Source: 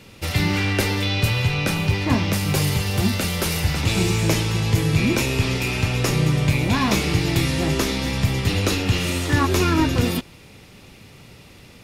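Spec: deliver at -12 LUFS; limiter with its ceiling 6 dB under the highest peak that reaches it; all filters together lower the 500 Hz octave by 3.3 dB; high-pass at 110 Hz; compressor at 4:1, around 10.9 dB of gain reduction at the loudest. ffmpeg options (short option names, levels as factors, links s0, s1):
-af "highpass=110,equalizer=f=500:t=o:g=-4.5,acompressor=threshold=0.0316:ratio=4,volume=10.6,alimiter=limit=0.708:level=0:latency=1"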